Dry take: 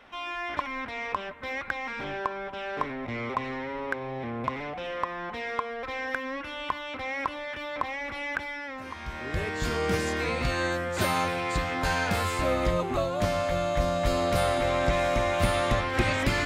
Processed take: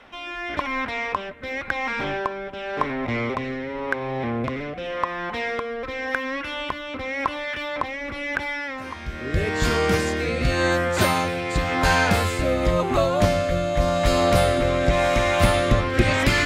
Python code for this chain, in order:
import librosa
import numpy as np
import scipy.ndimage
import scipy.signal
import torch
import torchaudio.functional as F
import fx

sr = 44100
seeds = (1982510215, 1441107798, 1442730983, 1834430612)

y = fx.rotary(x, sr, hz=0.9)
y = F.gain(torch.from_numpy(y), 8.5).numpy()